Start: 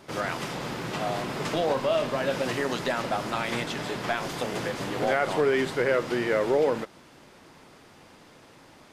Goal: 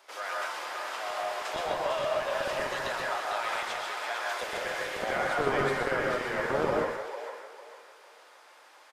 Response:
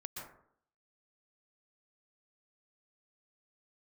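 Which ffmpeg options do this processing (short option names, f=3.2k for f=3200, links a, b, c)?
-filter_complex "[0:a]lowshelf=f=370:g=4,asplit=2[a][b];[b]asoftclip=type=tanh:threshold=-27dB,volume=-9.5dB[c];[a][c]amix=inputs=2:normalize=0,asettb=1/sr,asplit=3[d][e][f];[d]atrim=end=4.294[g];[e]atrim=start=4.29:end=5.04,asetpts=PTS-STARTPTS,afade=t=in:d=0.004:c=qsin,afade=t=out:st=0.746:d=0.004:c=qsin,equalizer=f=500:t=o:w=1:g=6,equalizer=f=1k:t=o:w=1:g=-8,equalizer=f=2k:t=o:w=1:g=6[h];[f]atrim=start=5.036[i];[g][h]acrossfade=d=0.004:c1=hsin:c2=qsin[j];[j][i]acrossfade=d=0.004:c1=qsin:c2=hsin,aecho=1:1:450|900|1350|1800:0.501|0.145|0.0421|0.0122,acrossover=split=570|5900[k][l][m];[k]acrusher=bits=2:mix=0:aa=0.5[n];[n][l][m]amix=inputs=3:normalize=0[o];[1:a]atrim=start_sample=2205,afade=t=out:st=0.34:d=0.01,atrim=end_sample=15435[p];[o][p]afir=irnorm=-1:irlink=0,volume=-1.5dB"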